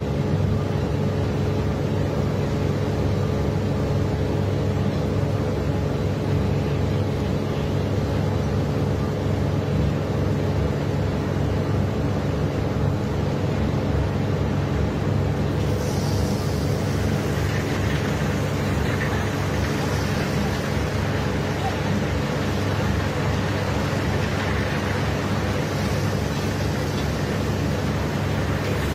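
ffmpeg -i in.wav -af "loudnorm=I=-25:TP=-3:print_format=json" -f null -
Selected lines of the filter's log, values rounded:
"input_i" : "-23.6",
"input_tp" : "-10.4",
"input_lra" : "0.7",
"input_thresh" : "-33.6",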